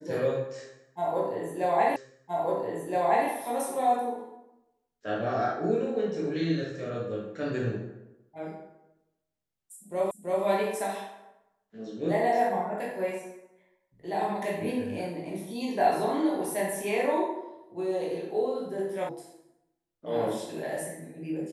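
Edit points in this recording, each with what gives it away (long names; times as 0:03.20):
0:01.96: the same again, the last 1.32 s
0:10.11: the same again, the last 0.33 s
0:19.09: cut off before it has died away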